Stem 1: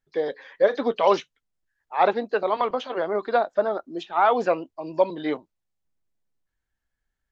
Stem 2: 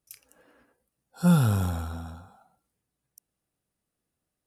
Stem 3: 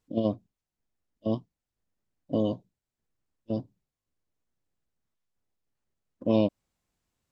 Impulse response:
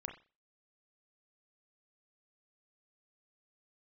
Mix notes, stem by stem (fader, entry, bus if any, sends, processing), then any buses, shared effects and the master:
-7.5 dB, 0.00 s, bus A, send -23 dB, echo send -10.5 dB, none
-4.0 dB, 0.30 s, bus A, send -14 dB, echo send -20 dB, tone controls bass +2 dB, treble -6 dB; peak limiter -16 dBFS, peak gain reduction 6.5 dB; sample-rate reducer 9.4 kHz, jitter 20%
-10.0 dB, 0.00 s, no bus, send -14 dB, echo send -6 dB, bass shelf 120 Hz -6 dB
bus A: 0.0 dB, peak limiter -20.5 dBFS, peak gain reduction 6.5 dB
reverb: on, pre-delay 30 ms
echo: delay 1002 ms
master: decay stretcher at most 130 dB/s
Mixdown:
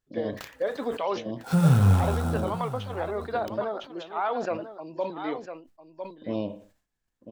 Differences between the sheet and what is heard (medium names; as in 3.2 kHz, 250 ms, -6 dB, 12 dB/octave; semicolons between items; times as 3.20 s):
stem 2 -4.0 dB -> +6.5 dB; stem 3: missing bass shelf 120 Hz -6 dB; reverb return +9.5 dB